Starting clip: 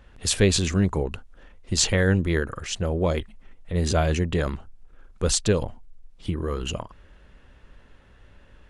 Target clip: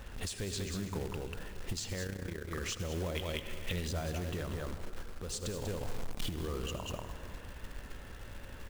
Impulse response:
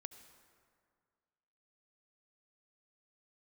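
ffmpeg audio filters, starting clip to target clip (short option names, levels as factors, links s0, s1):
-filter_complex "[0:a]asettb=1/sr,asplit=3[s0][s1][s2];[s0]atrim=end=5.464[s3];[s1]atrim=start=5.46:end=6.59,asetpts=PTS-STARTPTS,afade=t=in:d=0.004:c=qsin,afade=t=out:st=1.126:d=0.004:c=qsin,aeval=exprs='val(0)+0.5*0.015*sgn(val(0))':c=same[s4];[s2]atrim=start=6.586[s5];[s3][s4]acrossfade=d=0.004:c1=hsin:c2=qsin[s6];[s6][s5]acrossfade=d=0.004:c1=qsin:c2=hsin,aecho=1:1:191:0.376,acompressor=threshold=0.0178:ratio=16[s7];[1:a]atrim=start_sample=2205[s8];[s7][s8]afir=irnorm=-1:irlink=0,alimiter=level_in=4.73:limit=0.0631:level=0:latency=1:release=258,volume=0.211,asplit=3[s9][s10][s11];[s9]afade=t=out:st=2.04:d=0.02[s12];[s10]tremolo=f=31:d=0.75,afade=t=in:st=2.04:d=0.02,afade=t=out:st=2.51:d=0.02[s13];[s11]afade=t=in:st=2.51:d=0.02[s14];[s12][s13][s14]amix=inputs=3:normalize=0,asettb=1/sr,asplit=3[s15][s16][s17];[s15]atrim=end=3.154[s18];[s16]atrim=start=3.15:end=3.87,asetpts=PTS-STARTPTS,afade=t=in:d=0.004:c=qsin,afade=t=out:st=0.716:d=0.004:c=qsin,equalizer=f=3000:w=0.96:g=14[s19];[s17]atrim=start=3.866[s20];[s18][s19]acrossfade=d=0.004:c1=hsin:c2=qsin[s21];[s21][s20]acrossfade=d=0.004:c1=qsin:c2=hsin,acrusher=bits=3:mode=log:mix=0:aa=0.000001,volume=3.16"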